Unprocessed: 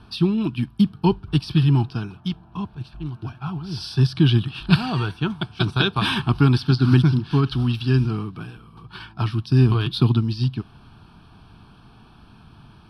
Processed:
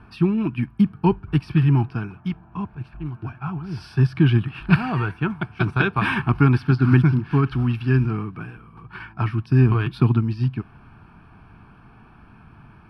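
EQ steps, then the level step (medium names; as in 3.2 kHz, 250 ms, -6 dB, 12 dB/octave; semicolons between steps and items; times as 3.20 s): resonant high shelf 2.8 kHz -9 dB, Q 3; 0.0 dB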